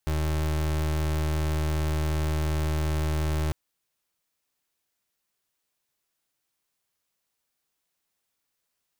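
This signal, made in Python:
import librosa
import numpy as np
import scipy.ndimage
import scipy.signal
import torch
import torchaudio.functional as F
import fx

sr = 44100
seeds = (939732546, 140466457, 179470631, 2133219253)

y = fx.pulse(sr, length_s=3.45, hz=77.3, level_db=-26.0, duty_pct=32)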